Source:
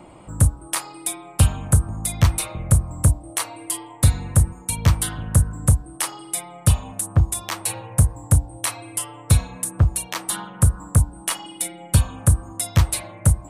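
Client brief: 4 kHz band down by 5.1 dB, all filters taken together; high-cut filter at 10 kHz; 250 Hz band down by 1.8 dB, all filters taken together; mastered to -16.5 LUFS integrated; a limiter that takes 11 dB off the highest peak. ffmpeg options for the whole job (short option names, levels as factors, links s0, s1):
-af "lowpass=10000,equalizer=f=250:t=o:g=-3.5,equalizer=f=4000:t=o:g=-6.5,volume=3.98,alimiter=limit=0.668:level=0:latency=1"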